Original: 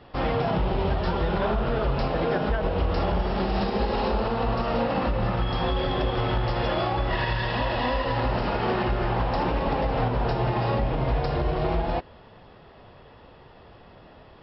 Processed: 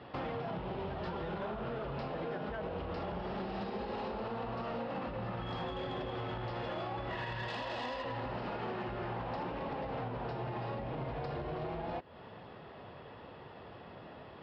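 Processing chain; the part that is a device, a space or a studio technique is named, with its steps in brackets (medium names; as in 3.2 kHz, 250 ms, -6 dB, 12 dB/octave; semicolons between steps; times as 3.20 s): AM radio (band-pass 100–3900 Hz; compression 5:1, threshold -36 dBFS, peak gain reduction 13.5 dB; saturation -29.5 dBFS, distortion -21 dB); 7.48–8.03 s: tone controls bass -5 dB, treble +11 dB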